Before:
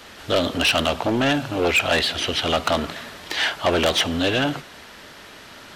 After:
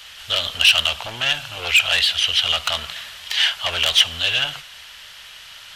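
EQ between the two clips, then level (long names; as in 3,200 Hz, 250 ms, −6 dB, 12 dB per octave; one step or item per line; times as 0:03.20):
guitar amp tone stack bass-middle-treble 10-0-10
parametric band 3,000 Hz +7.5 dB 0.42 octaves
+4.0 dB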